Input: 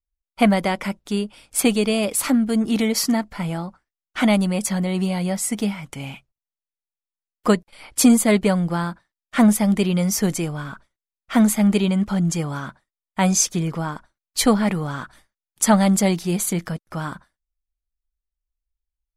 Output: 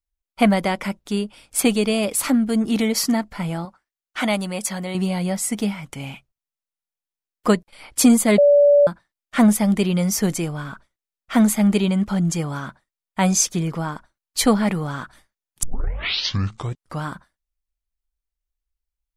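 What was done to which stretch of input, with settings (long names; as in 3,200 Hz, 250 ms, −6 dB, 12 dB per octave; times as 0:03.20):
0:03.65–0:04.95: low-shelf EQ 270 Hz −11 dB
0:08.38–0:08.87: beep over 577 Hz −9.5 dBFS
0:15.63: tape start 1.42 s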